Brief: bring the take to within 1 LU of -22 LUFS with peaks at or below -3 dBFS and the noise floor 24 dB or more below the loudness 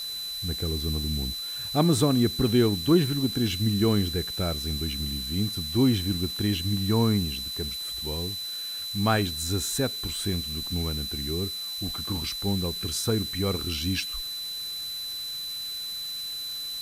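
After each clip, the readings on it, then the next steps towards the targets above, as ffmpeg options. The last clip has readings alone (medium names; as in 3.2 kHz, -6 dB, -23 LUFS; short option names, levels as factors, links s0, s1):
steady tone 4 kHz; tone level -32 dBFS; noise floor -34 dBFS; noise floor target -51 dBFS; loudness -27.0 LUFS; peak level -9.5 dBFS; loudness target -22.0 LUFS
-> -af "bandreject=f=4000:w=30"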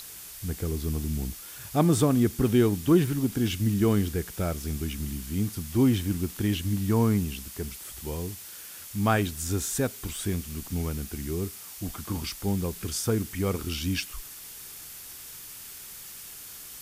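steady tone not found; noise floor -43 dBFS; noise floor target -52 dBFS
-> -af "afftdn=nr=9:nf=-43"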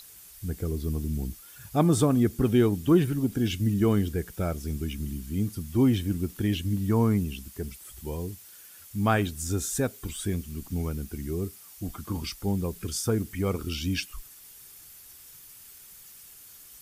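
noise floor -50 dBFS; noise floor target -52 dBFS
-> -af "afftdn=nr=6:nf=-50"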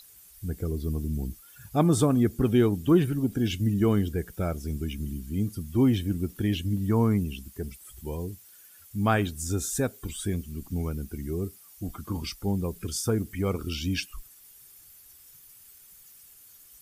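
noise floor -53 dBFS; loudness -28.0 LUFS; peak level -10.0 dBFS; loudness target -22.0 LUFS
-> -af "volume=2"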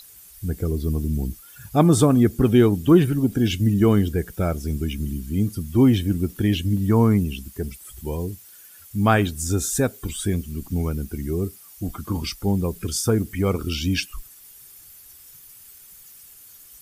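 loudness -22.0 LUFS; peak level -4.0 dBFS; noise floor -47 dBFS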